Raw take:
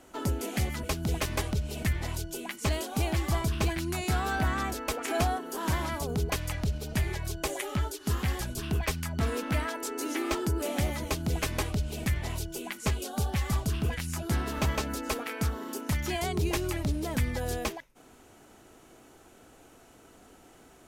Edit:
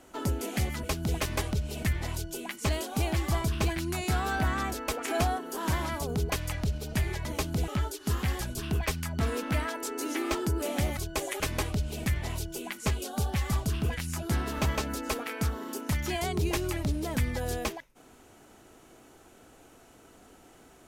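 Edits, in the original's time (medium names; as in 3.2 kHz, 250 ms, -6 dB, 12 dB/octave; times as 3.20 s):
7.25–7.68 s: swap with 10.97–11.40 s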